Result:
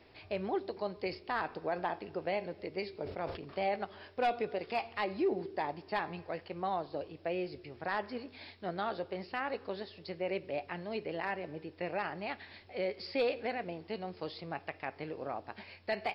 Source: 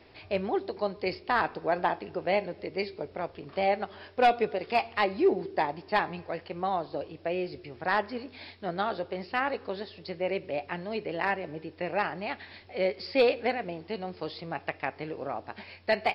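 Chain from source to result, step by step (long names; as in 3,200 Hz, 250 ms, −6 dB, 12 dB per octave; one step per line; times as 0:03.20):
brickwall limiter −19.5 dBFS, peak gain reduction 5 dB
0:02.93–0:03.76: level that may fall only so fast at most 74 dB per second
level −4.5 dB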